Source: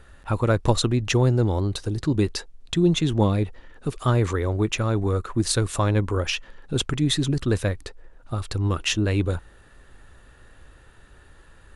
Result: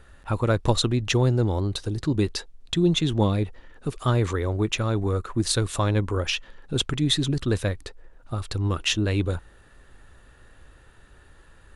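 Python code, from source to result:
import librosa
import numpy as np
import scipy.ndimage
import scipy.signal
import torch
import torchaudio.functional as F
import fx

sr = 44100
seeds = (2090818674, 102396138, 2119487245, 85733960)

y = fx.dynamic_eq(x, sr, hz=3600.0, q=2.4, threshold_db=-44.0, ratio=4.0, max_db=4)
y = y * 10.0 ** (-1.5 / 20.0)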